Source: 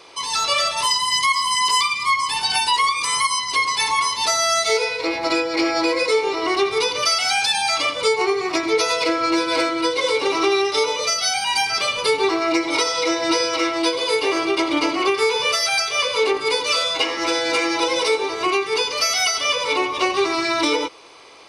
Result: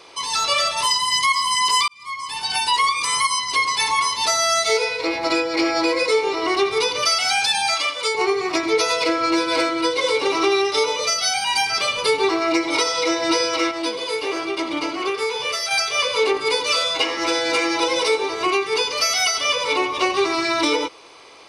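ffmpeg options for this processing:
ffmpeg -i in.wav -filter_complex "[0:a]asettb=1/sr,asplit=3[link_01][link_02][link_03];[link_01]atrim=end=7.744[link_04];[link_02]atrim=start=7.74:end=8.15,asetpts=PTS-STARTPTS,afade=type=in:duration=0.004:curve=qsin,afade=type=out:start_time=0.406:duration=0.004:curve=qsin,highpass=frequency=950:poles=1[link_05];[link_03]atrim=start=8.146[link_06];[link_04][link_05]acrossfade=duration=0.004:curve1=hsin:curve2=qsin[link_07];[link_07][link_06]acrossfade=duration=0.004:curve1=qsin:curve2=hsin,asettb=1/sr,asplit=3[link_08][link_09][link_10];[link_08]atrim=end=13.714[link_11];[link_09]atrim=start=13.71:end=15.71,asetpts=PTS-STARTPTS,afade=type=in:duration=0.004:curve=qsin,afade=type=out:start_time=1.996:duration=0.004:curve=qsin,flanger=delay=3.4:depth=9.5:regen=84:speed=1.3:shape=sinusoidal[link_12];[link_10]atrim=start=15.706[link_13];[link_11][link_12]acrossfade=duration=0.004:curve1=hsin:curve2=qsin[link_14];[link_14][link_13]acrossfade=duration=0.004:curve1=qsin:curve2=hsin,asplit=2[link_15][link_16];[link_15]atrim=end=1.88,asetpts=PTS-STARTPTS,afade=type=out:start_time=1.876:duration=0.004:curve=hsin[link_17];[link_16]atrim=start=1.88,asetpts=PTS-STARTPTS,afade=type=in:duration=0.89[link_18];[link_17][link_18]concat=n=2:v=0:a=1" out.wav

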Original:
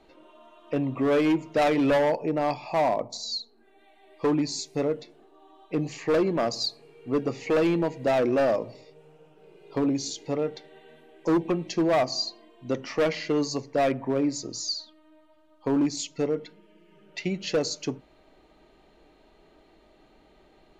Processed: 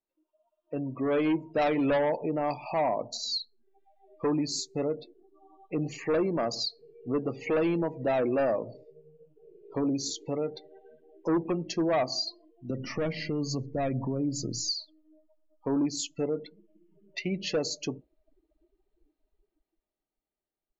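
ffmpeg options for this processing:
ffmpeg -i in.wav -filter_complex "[0:a]asettb=1/sr,asplit=3[link_01][link_02][link_03];[link_01]atrim=end=12.704[link_04];[link_02]atrim=start=12.7:end=14.71,asetpts=PTS-STARTPTS,afade=type=in:duration=0.004:curve=qsin,afade=type=out:start_time=2.006:duration=0.004:curve=qsin,bass=frequency=250:gain=13,treble=frequency=4000:gain=1[link_05];[link_03]atrim=start=14.706[link_06];[link_04][link_05]acrossfade=duration=0.004:curve1=hsin:curve2=qsin[link_07];[link_07][link_06]acrossfade=duration=0.004:curve1=qsin:curve2=hsin,dynaudnorm=framelen=170:gausssize=17:maxgain=8.5dB,alimiter=limit=-14.5dB:level=0:latency=1:release=127,afftdn=noise_reduction=30:noise_floor=-35,volume=-7.5dB" out.wav

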